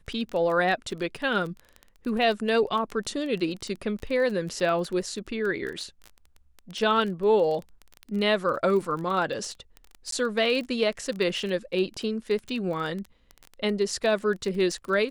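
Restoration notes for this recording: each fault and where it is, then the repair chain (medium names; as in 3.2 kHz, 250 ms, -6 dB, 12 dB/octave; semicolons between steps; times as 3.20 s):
crackle 22 per s -31 dBFS
10.11–10.12 s: dropout 13 ms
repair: de-click; interpolate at 10.11 s, 13 ms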